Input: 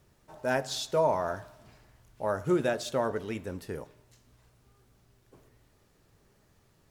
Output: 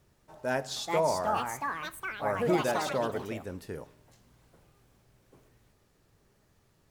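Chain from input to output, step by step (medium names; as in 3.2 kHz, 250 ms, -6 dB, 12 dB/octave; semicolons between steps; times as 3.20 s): ever faster or slower copies 546 ms, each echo +5 st, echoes 3; trim -2 dB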